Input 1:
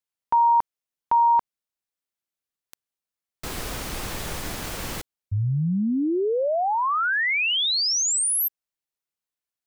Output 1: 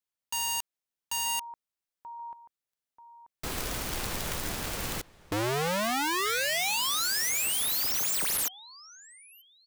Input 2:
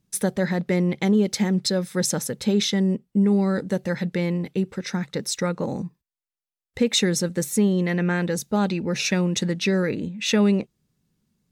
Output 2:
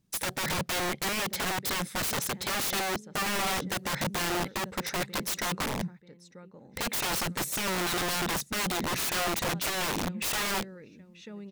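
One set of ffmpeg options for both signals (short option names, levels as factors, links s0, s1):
-filter_complex "[0:a]asplit=2[s0][s1];[s1]adelay=935,lowpass=f=4300:p=1,volume=0.075,asplit=2[s2][s3];[s3]adelay=935,lowpass=f=4300:p=1,volume=0.32[s4];[s0][s2][s4]amix=inputs=3:normalize=0,aeval=exprs='(mod(14.1*val(0)+1,2)-1)/14.1':c=same,volume=0.794"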